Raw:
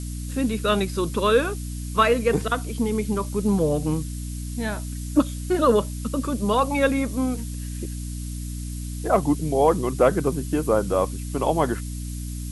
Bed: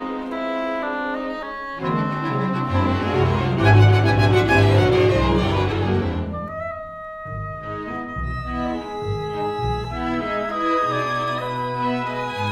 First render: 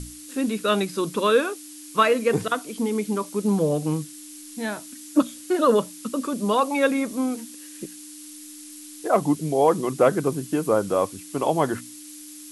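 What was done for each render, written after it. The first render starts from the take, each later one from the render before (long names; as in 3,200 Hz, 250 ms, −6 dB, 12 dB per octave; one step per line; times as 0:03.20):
mains-hum notches 60/120/180/240 Hz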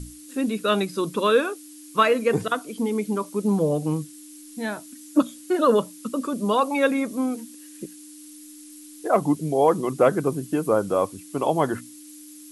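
broadband denoise 6 dB, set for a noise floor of −42 dBFS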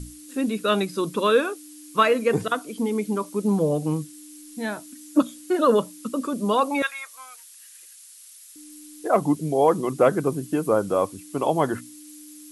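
0:06.82–0:08.56: high-pass filter 1,100 Hz 24 dB per octave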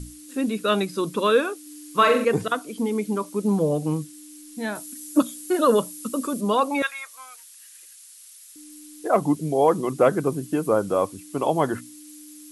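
0:01.62–0:02.25: flutter between parallel walls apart 7.5 metres, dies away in 0.49 s
0:04.75–0:06.41: high-shelf EQ 7,600 Hz +11.5 dB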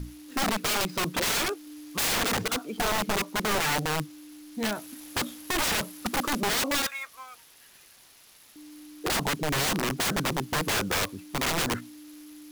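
running median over 5 samples
wrap-around overflow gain 21.5 dB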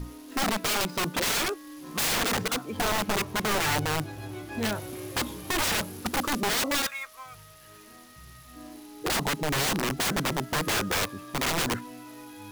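mix in bed −23.5 dB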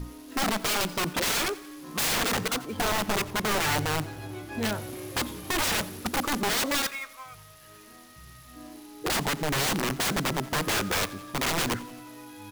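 repeating echo 88 ms, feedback 59%, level −20 dB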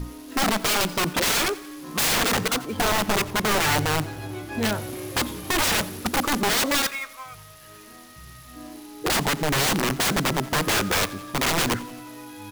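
level +4.5 dB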